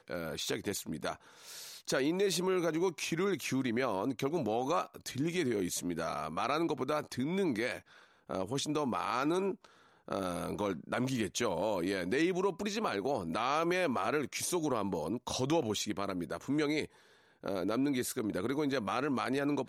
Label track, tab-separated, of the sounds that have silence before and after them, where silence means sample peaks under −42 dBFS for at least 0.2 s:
1.480000	7.790000	sound
8.300000	9.650000	sound
10.080000	16.850000	sound